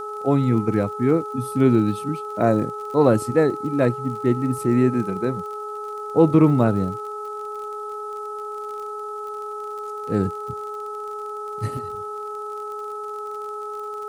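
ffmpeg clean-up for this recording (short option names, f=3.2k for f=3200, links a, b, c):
-af "adeclick=t=4,bandreject=f=419:t=h:w=4,bandreject=f=838:t=h:w=4,bandreject=f=1.257k:t=h:w=4,bandreject=f=1.3k:w=30,agate=range=-21dB:threshold=-24dB"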